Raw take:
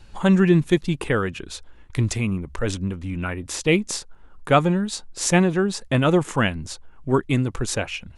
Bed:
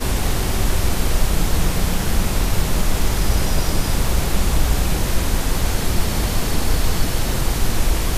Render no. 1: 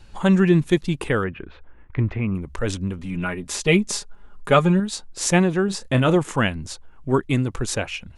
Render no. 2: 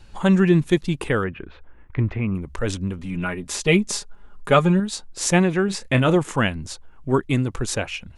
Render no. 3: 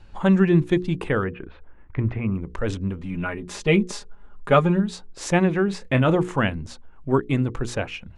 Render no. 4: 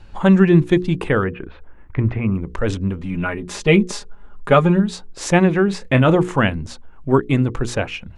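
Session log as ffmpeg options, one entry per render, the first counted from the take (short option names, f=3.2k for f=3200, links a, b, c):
-filter_complex "[0:a]asettb=1/sr,asplit=3[a][b][c];[a]atrim=end=1.244[d];[b]atrim=start=1.24:end=2.35,asetpts=PTS-STARTPTS,afade=t=in:d=0.004:c=qsin,afade=t=out:st=1.106:d=0.004:c=qsin,lowpass=f=2.3k:w=0.5412,lowpass=f=2.3k:w=1.3066[e];[c]atrim=start=2.346[f];[d][e]acrossfade=d=0.004:c1=hsin:c2=qsin[g];[g][f]acrossfade=d=0.004:c1=qsin:c2=hsin,asettb=1/sr,asplit=3[h][i][j];[h]atrim=end=2.984[k];[i]atrim=start=2.98:end=4.8,asetpts=PTS-STARTPTS,afade=t=in:d=0.004:c=qsin,afade=t=out:st=1.816:d=0.004:c=qsin,aecho=1:1:4.9:0.65,atrim=end_sample=80262[l];[j]atrim=start=4.796[m];[k][l]acrossfade=d=0.004:c1=hsin:c2=qsin[n];[n][m]acrossfade=d=0.004:c1=qsin:c2=hsin,asettb=1/sr,asplit=3[o][p][q];[o]atrim=end=5.654[r];[p]atrim=start=5.65:end=6.16,asetpts=PTS-STARTPTS,afade=t=in:d=0.004:c=qsin,afade=t=out:st=0.506:d=0.004:c=qsin,asplit=2[s][t];[t]adelay=31,volume=-11dB[u];[s][u]amix=inputs=2:normalize=0,atrim=end_sample=22491[v];[q]atrim=start=6.156[w];[r][v]acrossfade=d=0.004:c1=hsin:c2=qsin[x];[x][w]acrossfade=d=0.004:c1=qsin:c2=hsin"
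-filter_complex "[0:a]asettb=1/sr,asplit=3[a][b][c];[a]atrim=end=5.444[d];[b]atrim=start=5.44:end=5.99,asetpts=PTS-STARTPTS,afade=t=in:d=0.004:c=qsin,afade=t=out:st=0.546:d=0.004:c=qsin,equalizer=f=2.2k:t=o:w=0.52:g=8.5[e];[c]atrim=start=5.986[f];[d][e]acrossfade=d=0.004:c1=hsin:c2=qsin[g];[g][f]acrossfade=d=0.004:c1=qsin:c2=hsin"
-af "lowpass=f=2.2k:p=1,bandreject=f=60:t=h:w=6,bandreject=f=120:t=h:w=6,bandreject=f=180:t=h:w=6,bandreject=f=240:t=h:w=6,bandreject=f=300:t=h:w=6,bandreject=f=360:t=h:w=6,bandreject=f=420:t=h:w=6,bandreject=f=480:t=h:w=6"
-af "volume=5dB,alimiter=limit=-2dB:level=0:latency=1"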